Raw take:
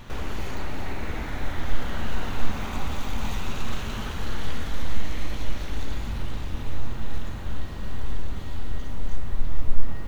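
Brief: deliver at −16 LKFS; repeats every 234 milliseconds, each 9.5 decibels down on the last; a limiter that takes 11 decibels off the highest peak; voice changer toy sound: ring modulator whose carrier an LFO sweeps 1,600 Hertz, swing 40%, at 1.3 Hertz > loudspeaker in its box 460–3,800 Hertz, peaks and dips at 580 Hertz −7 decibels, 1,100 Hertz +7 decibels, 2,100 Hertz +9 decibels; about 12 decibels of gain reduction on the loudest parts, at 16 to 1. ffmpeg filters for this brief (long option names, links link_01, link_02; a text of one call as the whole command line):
ffmpeg -i in.wav -af "acompressor=threshold=-17dB:ratio=16,alimiter=level_in=0.5dB:limit=-24dB:level=0:latency=1,volume=-0.5dB,aecho=1:1:234|468|702|936:0.335|0.111|0.0365|0.012,aeval=exprs='val(0)*sin(2*PI*1600*n/s+1600*0.4/1.3*sin(2*PI*1.3*n/s))':channel_layout=same,highpass=460,equalizer=frequency=580:width_type=q:width=4:gain=-7,equalizer=frequency=1100:width_type=q:width=4:gain=7,equalizer=frequency=2100:width_type=q:width=4:gain=9,lowpass=frequency=3800:width=0.5412,lowpass=frequency=3800:width=1.3066,volume=6dB" out.wav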